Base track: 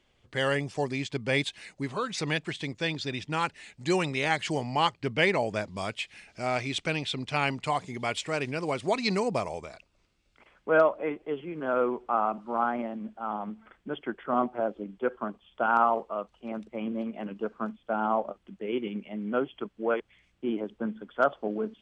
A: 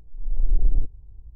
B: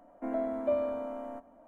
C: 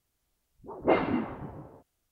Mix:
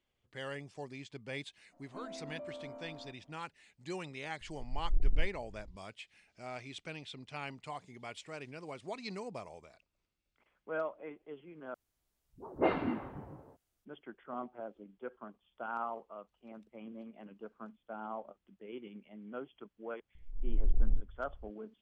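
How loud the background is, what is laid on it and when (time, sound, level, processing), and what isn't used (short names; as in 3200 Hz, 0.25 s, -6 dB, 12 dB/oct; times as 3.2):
base track -15 dB
1.72 add B -10.5 dB + limiter -29 dBFS
4.41 add A -9.5 dB + auto swell 0.154 s
11.74 replace with C -5.5 dB
20.15 add A -8.5 dB + Doppler distortion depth 0.8 ms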